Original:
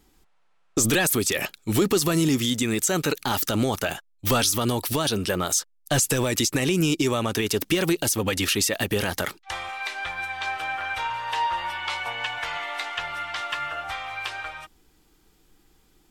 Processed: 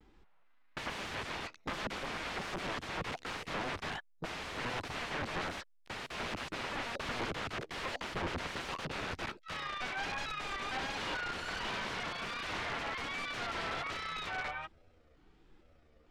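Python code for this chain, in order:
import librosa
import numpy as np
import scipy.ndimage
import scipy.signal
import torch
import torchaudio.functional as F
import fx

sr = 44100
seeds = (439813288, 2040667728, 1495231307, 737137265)

y = fx.pitch_trill(x, sr, semitones=8.0, every_ms=446)
y = (np.mod(10.0 ** (27.5 / 20.0) * y + 1.0, 2.0) - 1.0) / 10.0 ** (27.5 / 20.0)
y = scipy.signal.sosfilt(scipy.signal.butter(2, 2700.0, 'lowpass', fs=sr, output='sos'), y)
y = fx.vibrato(y, sr, rate_hz=1.3, depth_cents=89.0)
y = y * 10.0 ** (-1.5 / 20.0)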